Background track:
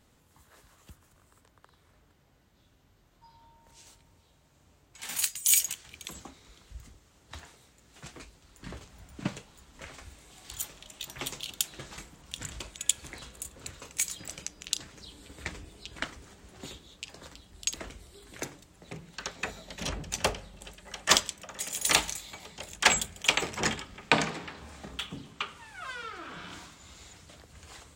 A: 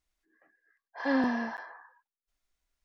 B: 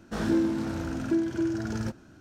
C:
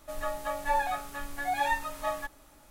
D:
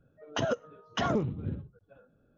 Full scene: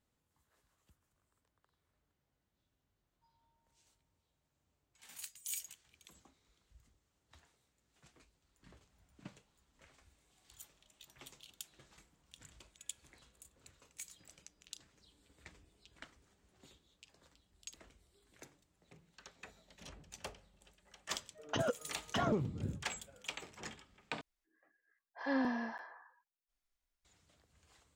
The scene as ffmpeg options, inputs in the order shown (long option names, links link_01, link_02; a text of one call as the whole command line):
ffmpeg -i bed.wav -i cue0.wav -i cue1.wav -i cue2.wav -i cue3.wav -filter_complex "[0:a]volume=-19dB,asplit=2[link_01][link_02];[link_01]atrim=end=24.214[link_03];[1:a]atrim=end=2.84,asetpts=PTS-STARTPTS,volume=-7dB[link_04];[link_02]atrim=start=27.046[link_05];[4:a]atrim=end=2.37,asetpts=PTS-STARTPTS,volume=-5dB,afade=type=in:duration=0.004:curve=hsin,afade=type=out:start_time=2.366:duration=0.004:curve=hsin,adelay=21170[link_06];[link_03][link_04]acrossfade=duration=0.004:curve1=hsin:curve2=hsin[link_07];[link_07][link_05]acrossfade=duration=0.004:curve1=hsin:curve2=hsin[link_08];[link_08][link_06]amix=inputs=2:normalize=0" out.wav